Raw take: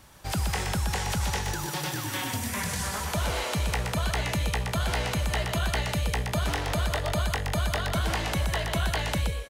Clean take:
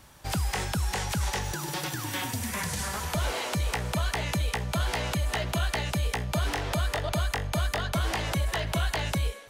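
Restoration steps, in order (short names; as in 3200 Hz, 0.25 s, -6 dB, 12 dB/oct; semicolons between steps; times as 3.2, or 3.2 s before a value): inverse comb 0.123 s -5.5 dB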